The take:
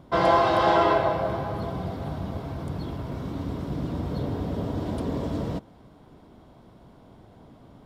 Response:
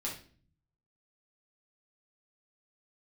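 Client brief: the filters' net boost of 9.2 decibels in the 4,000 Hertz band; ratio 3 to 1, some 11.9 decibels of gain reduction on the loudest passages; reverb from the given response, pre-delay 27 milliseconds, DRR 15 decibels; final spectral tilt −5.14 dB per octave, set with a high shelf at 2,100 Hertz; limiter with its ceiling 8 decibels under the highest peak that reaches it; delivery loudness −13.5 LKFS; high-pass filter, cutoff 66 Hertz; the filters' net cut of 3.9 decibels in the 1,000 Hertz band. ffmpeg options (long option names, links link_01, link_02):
-filter_complex "[0:a]highpass=66,equalizer=frequency=1000:width_type=o:gain=-7,highshelf=frequency=2100:gain=8.5,equalizer=frequency=4000:width_type=o:gain=4,acompressor=threshold=-34dB:ratio=3,alimiter=level_in=5dB:limit=-24dB:level=0:latency=1,volume=-5dB,asplit=2[link_01][link_02];[1:a]atrim=start_sample=2205,adelay=27[link_03];[link_02][link_03]afir=irnorm=-1:irlink=0,volume=-16.5dB[link_04];[link_01][link_04]amix=inputs=2:normalize=0,volume=24.5dB"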